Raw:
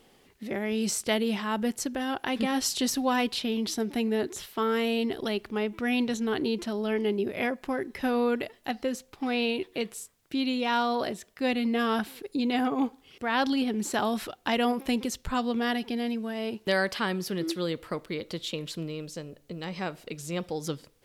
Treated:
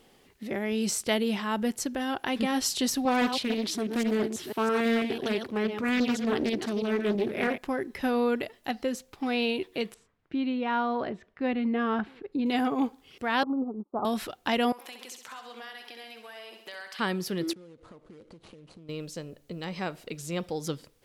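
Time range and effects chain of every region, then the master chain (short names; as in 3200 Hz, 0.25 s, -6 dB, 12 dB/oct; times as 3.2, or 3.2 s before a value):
3.05–7.58 reverse delay 0.164 s, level -7 dB + HPF 83 Hz 24 dB/oct + Doppler distortion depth 0.46 ms
9.94–12.46 LPF 1900 Hz + bell 600 Hz -2.5 dB 0.97 oct
13.43–14.05 steep low-pass 1300 Hz 96 dB/oct + low shelf 94 Hz -9 dB + upward expander 2.5:1, over -49 dBFS
14.72–16.99 HPF 830 Hz + compressor 4:1, threshold -41 dBFS + feedback echo 66 ms, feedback 60%, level -8 dB
17.53–18.89 median filter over 25 samples + compressor 12:1, threshold -46 dBFS + brick-wall FIR low-pass 11000 Hz
whole clip: dry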